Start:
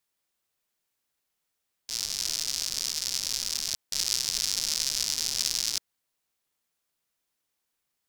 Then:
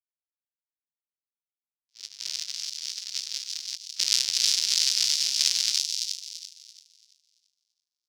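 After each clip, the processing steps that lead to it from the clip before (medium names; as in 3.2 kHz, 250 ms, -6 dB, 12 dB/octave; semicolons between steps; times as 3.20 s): frequency weighting D; gate -19 dBFS, range -50 dB; on a send: feedback echo behind a high-pass 337 ms, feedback 32%, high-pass 3.3 kHz, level -3 dB; on the sum: trim -3.5 dB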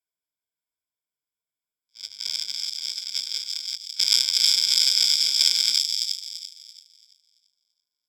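rippled EQ curve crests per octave 1.7, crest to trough 17 dB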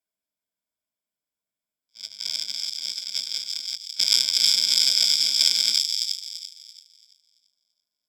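small resonant body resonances 230/600 Hz, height 10 dB, ringing for 40 ms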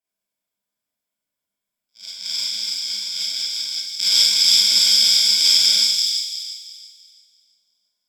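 reverberation RT60 0.90 s, pre-delay 31 ms, DRR -8.5 dB; trim -3.5 dB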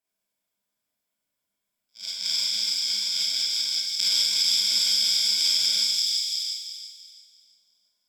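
compression 3:1, threshold -24 dBFS, peak gain reduction 10.5 dB; trim +1.5 dB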